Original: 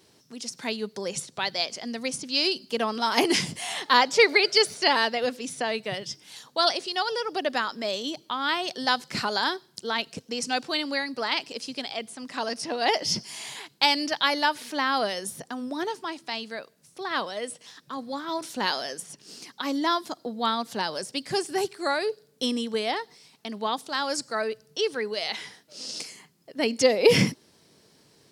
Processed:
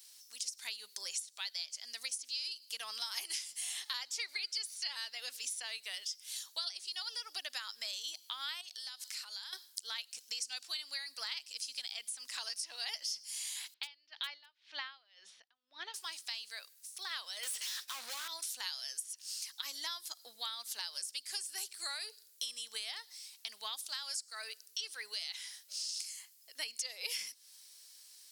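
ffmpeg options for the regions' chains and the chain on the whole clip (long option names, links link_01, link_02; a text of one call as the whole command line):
ffmpeg -i in.wav -filter_complex "[0:a]asettb=1/sr,asplit=3[link_01][link_02][link_03];[link_01]atrim=end=8.614[link_04];[link_02]atrim=start=8.61:end=9.53,asetpts=PTS-STARTPTS,afade=type=in:duration=0.004:curve=qsin,afade=type=out:start_time=0.916:duration=0.004:curve=qsin,equalizer=frequency=190:width_type=o:width=2.2:gain=-9,acompressor=threshold=-40dB:ratio=6:attack=3.2:release=140:knee=1:detection=peak[link_05];[link_03]atrim=start=9.526[link_06];[link_04][link_05]acrossfade=duration=0.004:curve1=hsin:curve2=qsin[link_07];[link_07][link_06]acrossfade=duration=0.004:curve1=qsin:curve2=hsin,asettb=1/sr,asplit=3[link_08][link_09][link_10];[link_08]atrim=end=13.744[link_11];[link_09]atrim=start=13.74:end=15.94,asetpts=PTS-STARTPTS,afade=type=in:duration=0.004:curve=qsin,afade=type=out:start_time=2.196:duration=0.004:curve=qsin,lowpass=frequency=3600:width=0.5412,lowpass=frequency=3600:width=1.3066,asoftclip=type=hard:threshold=-10.5dB,aeval=exprs='val(0)*pow(10,-33*(0.5-0.5*cos(2*PI*1.9*n/s))/20)':channel_layout=same[link_12];[link_10]atrim=start=15.936[link_13];[link_11][link_12]acrossfade=duration=0.004:curve1=hsin:curve2=qsin[link_14];[link_14][link_13]acrossfade=duration=0.004:curve1=qsin:curve2=hsin,asettb=1/sr,asplit=3[link_15][link_16][link_17];[link_15]atrim=end=17.434[link_18];[link_16]atrim=start=17.43:end=18.28,asetpts=PTS-STARTPTS,afade=type=in:duration=0.004:curve=qsin,afade=type=out:start_time=0.846:duration=0.004:curve=qsin,agate=range=-33dB:threshold=-53dB:ratio=3:release=100:detection=peak,asplit=2[link_19][link_20];[link_20]highpass=frequency=720:poles=1,volume=38dB,asoftclip=type=tanh:threshold=-20.5dB[link_21];[link_19][link_21]amix=inputs=2:normalize=0,lowpass=frequency=2100:poles=1,volume=-6dB[link_22];[link_17]atrim=start=18.276[link_23];[link_18][link_22]acrossfade=duration=0.004:curve1=hsin:curve2=qsin[link_24];[link_24][link_23]acrossfade=duration=0.004:curve1=qsin:curve2=hsin,highpass=frequency=1500:poles=1,aderivative,acompressor=threshold=-45dB:ratio=6,volume=7.5dB" out.wav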